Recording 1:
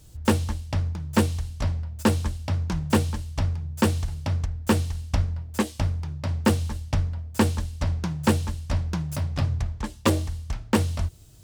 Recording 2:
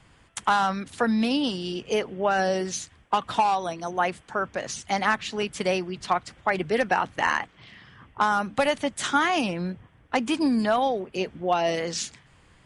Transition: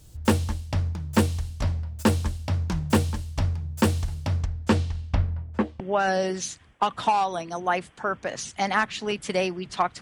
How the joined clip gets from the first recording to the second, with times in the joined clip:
recording 1
4.42–5.80 s: low-pass 8.9 kHz -> 1.3 kHz
5.80 s: go over to recording 2 from 2.11 s

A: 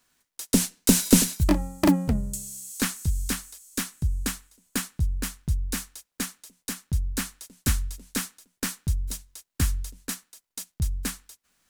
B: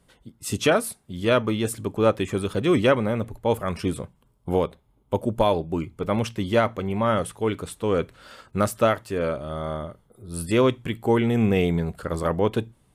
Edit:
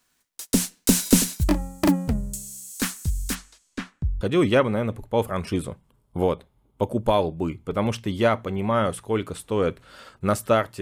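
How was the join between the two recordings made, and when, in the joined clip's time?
A
3.34–4.21 s: low-pass 6.7 kHz -> 1.2 kHz
4.21 s: go over to B from 2.53 s

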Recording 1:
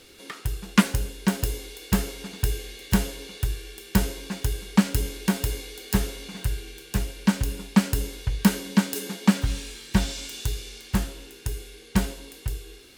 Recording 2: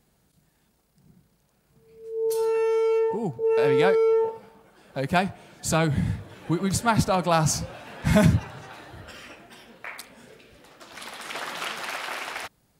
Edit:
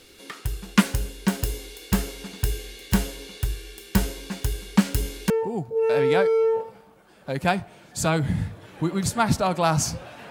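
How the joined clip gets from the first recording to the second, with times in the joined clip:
recording 1
5.30 s: go over to recording 2 from 2.98 s

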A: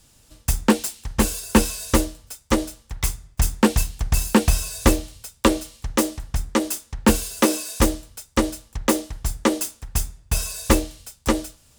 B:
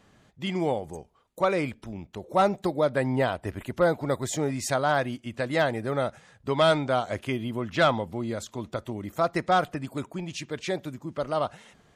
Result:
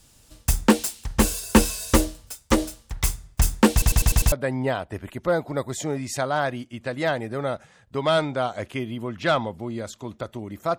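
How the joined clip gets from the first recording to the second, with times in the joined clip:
A
3.72 s: stutter in place 0.10 s, 6 plays
4.32 s: go over to B from 2.85 s

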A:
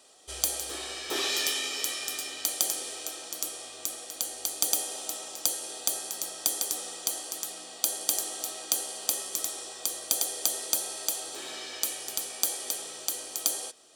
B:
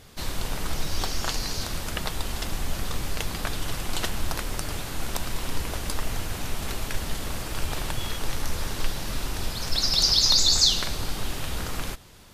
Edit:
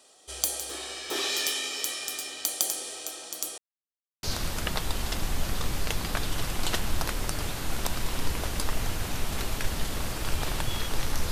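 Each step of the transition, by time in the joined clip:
A
3.58–4.23 s: mute
4.23 s: go over to B from 1.53 s

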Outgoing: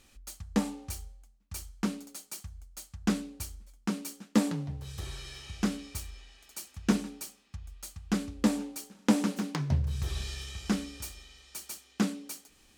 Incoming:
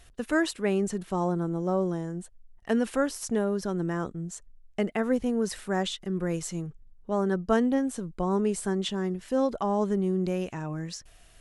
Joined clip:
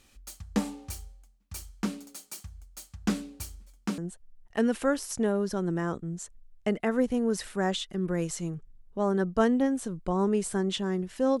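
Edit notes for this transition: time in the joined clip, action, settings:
outgoing
3.98 s: go over to incoming from 2.10 s

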